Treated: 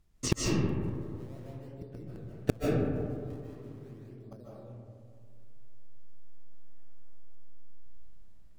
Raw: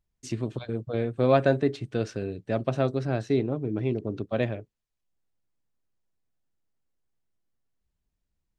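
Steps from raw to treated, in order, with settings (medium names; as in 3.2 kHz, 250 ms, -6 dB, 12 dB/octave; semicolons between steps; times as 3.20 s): low-pass that closes with the level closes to 460 Hz, closed at -20.5 dBFS; dynamic bell 110 Hz, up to +8 dB, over -44 dBFS, Q 1.6; inverted gate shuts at -25 dBFS, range -41 dB; in parallel at -4.5 dB: decimation with a swept rate 38×, swing 160% 0.41 Hz; on the sum: reverberation RT60 2.2 s, pre-delay 110 ms, DRR -5 dB; trim +8 dB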